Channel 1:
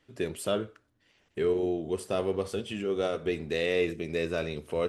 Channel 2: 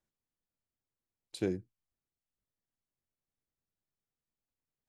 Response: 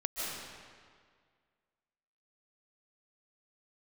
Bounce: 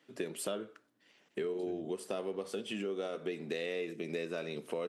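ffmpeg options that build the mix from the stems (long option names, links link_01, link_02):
-filter_complex "[0:a]highpass=frequency=170:width=0.5412,highpass=frequency=170:width=1.3066,volume=0.5dB[link_01];[1:a]adelay=250,volume=-11dB[link_02];[link_01][link_02]amix=inputs=2:normalize=0,acompressor=threshold=-34dB:ratio=6"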